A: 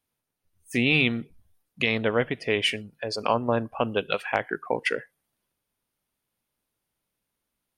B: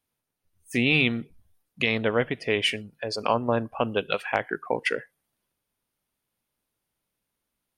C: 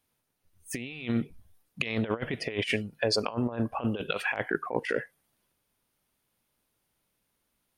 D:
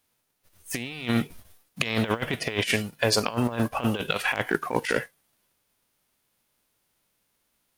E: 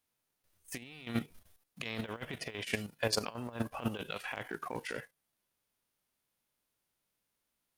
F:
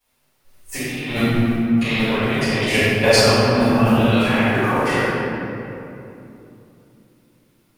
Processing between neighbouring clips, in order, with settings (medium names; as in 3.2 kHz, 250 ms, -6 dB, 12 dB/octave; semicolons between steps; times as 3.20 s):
no audible change
compressor with a negative ratio -29 dBFS, ratio -0.5
formants flattened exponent 0.6; trim +4 dB
level held to a coarse grid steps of 11 dB; trim -7 dB
reverberation RT60 2.9 s, pre-delay 3 ms, DRR -18.5 dB